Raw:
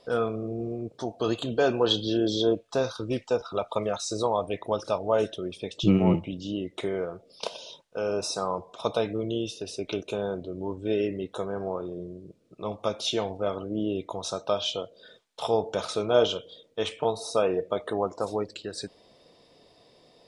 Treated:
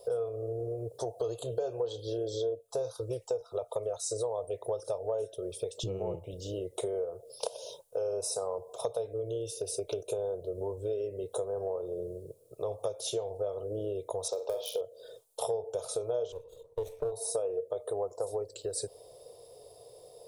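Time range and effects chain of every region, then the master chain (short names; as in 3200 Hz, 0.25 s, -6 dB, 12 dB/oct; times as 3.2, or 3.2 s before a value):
14.28–14.81 speaker cabinet 300–5600 Hz, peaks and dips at 440 Hz +6 dB, 660 Hz -5 dB, 1400 Hz -10 dB, 2200 Hz +6 dB + hard clip -22.5 dBFS + flutter echo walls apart 7.8 m, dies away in 0.33 s
16.32–17.12 minimum comb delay 0.5 ms + LPF 1400 Hz 6 dB/oct
whole clip: EQ curve 120 Hz 0 dB, 240 Hz -28 dB, 460 Hz +3 dB, 1900 Hz -23 dB, 5900 Hz -7 dB, 11000 Hz +11 dB; compressor 6:1, threshold -39 dBFS; low shelf 140 Hz -8 dB; gain +8.5 dB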